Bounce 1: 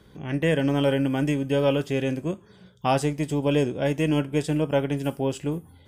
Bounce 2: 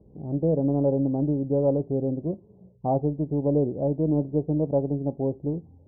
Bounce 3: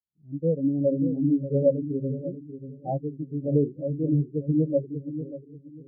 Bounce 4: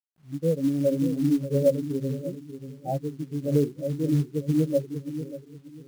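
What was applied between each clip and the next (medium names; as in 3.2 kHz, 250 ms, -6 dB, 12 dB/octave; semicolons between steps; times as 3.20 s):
local Wiener filter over 25 samples; steep low-pass 790 Hz 36 dB/octave
fade out at the end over 1.18 s; bucket-brigade echo 587 ms, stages 2048, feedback 57%, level -4 dB; spectral contrast expander 2.5:1
companded quantiser 6-bit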